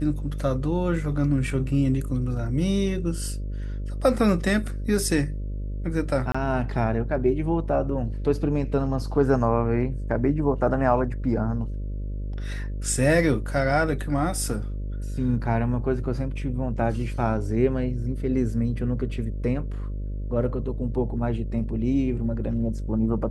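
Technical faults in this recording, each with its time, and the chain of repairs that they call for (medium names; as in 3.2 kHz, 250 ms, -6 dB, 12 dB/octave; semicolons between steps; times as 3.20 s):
buzz 50 Hz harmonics 12 -30 dBFS
6.32–6.34 s: dropout 25 ms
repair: de-hum 50 Hz, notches 12; interpolate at 6.32 s, 25 ms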